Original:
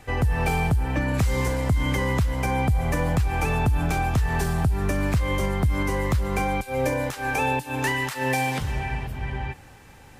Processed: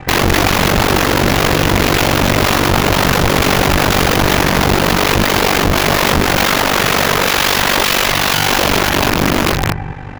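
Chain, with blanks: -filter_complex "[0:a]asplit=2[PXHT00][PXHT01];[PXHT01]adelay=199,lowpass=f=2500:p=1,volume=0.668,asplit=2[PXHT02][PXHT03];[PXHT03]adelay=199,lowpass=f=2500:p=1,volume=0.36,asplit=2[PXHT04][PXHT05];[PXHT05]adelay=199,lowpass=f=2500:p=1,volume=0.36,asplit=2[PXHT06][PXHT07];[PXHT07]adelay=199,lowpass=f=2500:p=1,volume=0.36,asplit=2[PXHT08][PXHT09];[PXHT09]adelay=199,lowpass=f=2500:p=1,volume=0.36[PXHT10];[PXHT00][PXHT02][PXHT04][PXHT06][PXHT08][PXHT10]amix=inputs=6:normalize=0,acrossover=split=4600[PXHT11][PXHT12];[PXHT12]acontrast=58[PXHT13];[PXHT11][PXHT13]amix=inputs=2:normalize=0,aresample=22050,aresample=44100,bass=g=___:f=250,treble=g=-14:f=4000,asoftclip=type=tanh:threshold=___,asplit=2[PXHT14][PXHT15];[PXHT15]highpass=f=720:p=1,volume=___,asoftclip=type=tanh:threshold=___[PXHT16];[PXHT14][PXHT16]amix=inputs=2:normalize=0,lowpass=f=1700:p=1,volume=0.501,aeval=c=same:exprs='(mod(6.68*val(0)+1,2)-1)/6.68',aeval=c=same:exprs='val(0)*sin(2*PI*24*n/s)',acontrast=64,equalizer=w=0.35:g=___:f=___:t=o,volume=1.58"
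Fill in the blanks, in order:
14, 0.316, 7.94, 0.316, -8, 8600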